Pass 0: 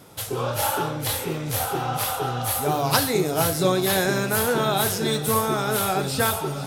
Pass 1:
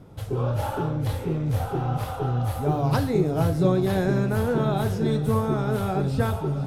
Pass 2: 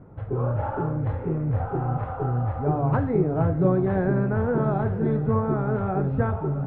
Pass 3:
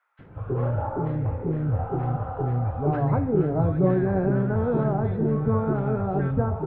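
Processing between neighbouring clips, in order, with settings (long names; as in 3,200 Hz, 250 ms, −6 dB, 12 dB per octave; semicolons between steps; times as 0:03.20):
spectral tilt −4 dB per octave; level −6 dB
low-pass filter 1,800 Hz 24 dB per octave
multiband delay without the direct sound highs, lows 190 ms, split 1,400 Hz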